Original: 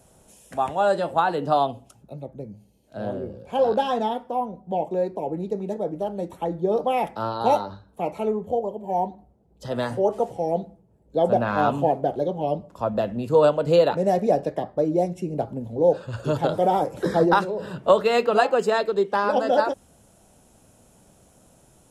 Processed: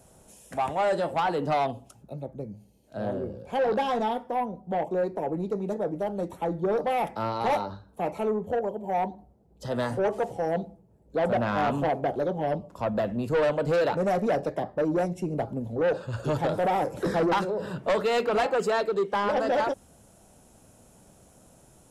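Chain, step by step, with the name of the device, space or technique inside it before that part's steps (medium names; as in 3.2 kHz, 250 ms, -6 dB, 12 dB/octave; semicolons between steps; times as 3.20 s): peaking EQ 3.2 kHz -2 dB; saturation between pre-emphasis and de-emphasis (treble shelf 7.1 kHz +7.5 dB; saturation -20 dBFS, distortion -9 dB; treble shelf 7.1 kHz -7.5 dB)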